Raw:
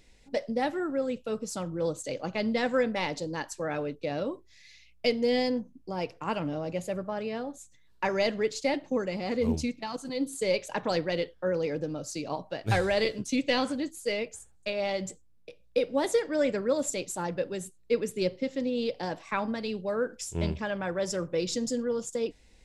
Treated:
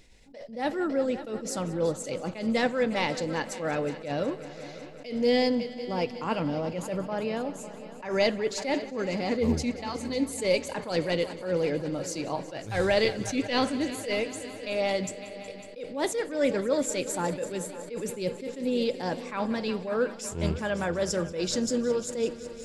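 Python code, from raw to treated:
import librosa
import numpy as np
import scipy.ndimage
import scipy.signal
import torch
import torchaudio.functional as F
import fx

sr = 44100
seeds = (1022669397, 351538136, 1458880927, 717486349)

y = fx.echo_heads(x, sr, ms=184, heads='all three', feedback_pct=62, wet_db=-19.5)
y = fx.attack_slew(y, sr, db_per_s=120.0)
y = F.gain(torch.from_numpy(y), 3.0).numpy()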